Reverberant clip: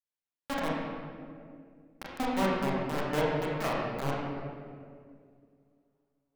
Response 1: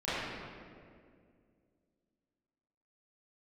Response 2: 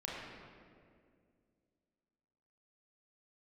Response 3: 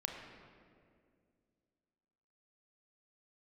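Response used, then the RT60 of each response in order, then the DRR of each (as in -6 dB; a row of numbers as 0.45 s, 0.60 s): 2; 2.2 s, 2.2 s, 2.2 s; -15.5 dB, -6.0 dB, 1.0 dB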